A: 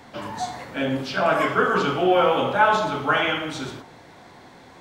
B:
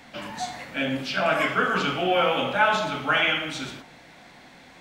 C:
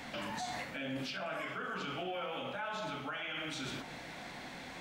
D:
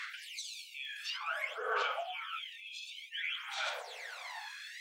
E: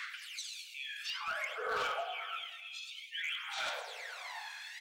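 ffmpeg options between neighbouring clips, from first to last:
ffmpeg -i in.wav -af "equalizer=frequency=100:width_type=o:width=0.67:gain=-10,equalizer=frequency=400:width_type=o:width=0.67:gain=-8,equalizer=frequency=1000:width_type=o:width=0.67:gain=-6,equalizer=frequency=2500:width_type=o:width=0.67:gain=5" out.wav
ffmpeg -i in.wav -af "areverse,acompressor=threshold=-30dB:ratio=6,areverse,alimiter=level_in=9.5dB:limit=-24dB:level=0:latency=1:release=161,volume=-9.5dB,volume=2.5dB" out.wav
ffmpeg -i in.wav -af "aphaser=in_gain=1:out_gain=1:delay=1.2:decay=0.71:speed=0.55:type=sinusoidal,afftfilt=real='re*gte(b*sr/1024,410*pow(2300/410,0.5+0.5*sin(2*PI*0.44*pts/sr)))':imag='im*gte(b*sr/1024,410*pow(2300/410,0.5+0.5*sin(2*PI*0.44*pts/sr)))':win_size=1024:overlap=0.75" out.wav
ffmpeg -i in.wav -filter_complex "[0:a]aecho=1:1:105|210|315|420|525|630:0.224|0.132|0.0779|0.046|0.0271|0.016,acrossover=split=480|7300[link_01][link_02][link_03];[link_02]asoftclip=type=hard:threshold=-31.5dB[link_04];[link_01][link_04][link_03]amix=inputs=3:normalize=0" out.wav

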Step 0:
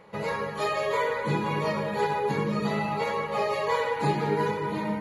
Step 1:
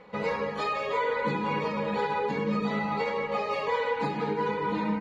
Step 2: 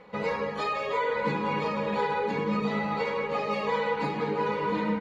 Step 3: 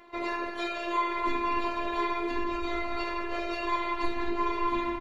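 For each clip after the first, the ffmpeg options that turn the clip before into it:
ffmpeg -i in.wav -af "alimiter=limit=-20dB:level=0:latency=1:release=213,lowpass=5000,aecho=1:1:4:0.6" out.wav
ffmpeg -i in.wav -af "aecho=1:1:1010:0.335" out.wav
ffmpeg -i in.wav -filter_complex "[0:a]asplit=2[link_01][link_02];[link_02]adelay=200,highpass=300,lowpass=3400,asoftclip=type=hard:threshold=-26dB,volume=-17dB[link_03];[link_01][link_03]amix=inputs=2:normalize=0,afftfilt=real='hypot(re,im)*cos(PI*b)':imag='0':win_size=512:overlap=0.75,asubboost=boost=11.5:cutoff=52,volume=4dB" out.wav

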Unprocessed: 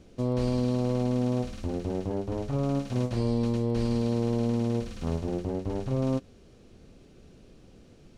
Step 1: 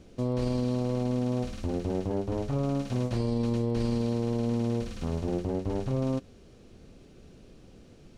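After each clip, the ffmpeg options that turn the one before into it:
ffmpeg -i in.wav -af "alimiter=limit=-20dB:level=0:latency=1:release=15,volume=1dB" out.wav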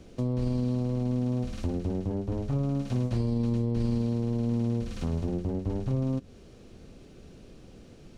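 ffmpeg -i in.wav -filter_complex "[0:a]acrossover=split=280[link_01][link_02];[link_02]acompressor=threshold=-39dB:ratio=6[link_03];[link_01][link_03]amix=inputs=2:normalize=0,volume=2.5dB" out.wav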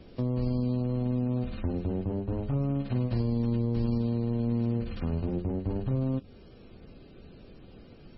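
ffmpeg -i in.wav -ar 22050 -c:a libmp3lame -b:a 16k out.mp3

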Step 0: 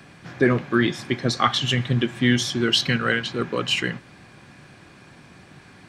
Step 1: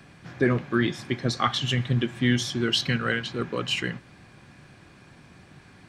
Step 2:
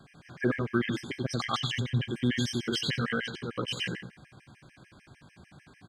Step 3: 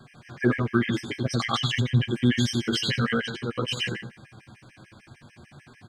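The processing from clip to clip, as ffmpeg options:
ffmpeg -i in.wav -af "lowshelf=frequency=100:gain=7,volume=-4.5dB" out.wav
ffmpeg -i in.wav -af "aecho=1:1:91|182|273|364:0.631|0.17|0.046|0.0124,afftfilt=real='re*gt(sin(2*PI*6.7*pts/sr)*(1-2*mod(floor(b*sr/1024/1600),2)),0)':imag='im*gt(sin(2*PI*6.7*pts/sr)*(1-2*mod(floor(b*sr/1024/1600),2)),0)':win_size=1024:overlap=0.75,volume=-3dB" out.wav
ffmpeg -i in.wav -af "flanger=delay=8.1:depth=1.5:regen=-16:speed=0.54:shape=triangular,volume=8dB" out.wav

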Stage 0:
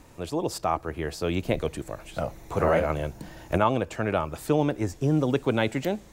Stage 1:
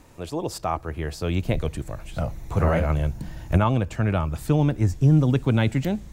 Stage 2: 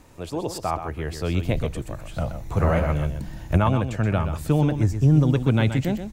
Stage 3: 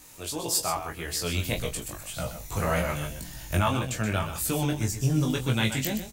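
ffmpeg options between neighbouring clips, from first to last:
ffmpeg -i in.wav -af "asubboost=boost=5:cutoff=190" out.wav
ffmpeg -i in.wav -af "aecho=1:1:126:0.355" out.wav
ffmpeg -i in.wav -filter_complex "[0:a]crystalizer=i=8.5:c=0,flanger=delay=16.5:depth=3.6:speed=1.8,asplit=2[link_01][link_02];[link_02]adelay=23,volume=-7.5dB[link_03];[link_01][link_03]amix=inputs=2:normalize=0,volume=-5dB" out.wav

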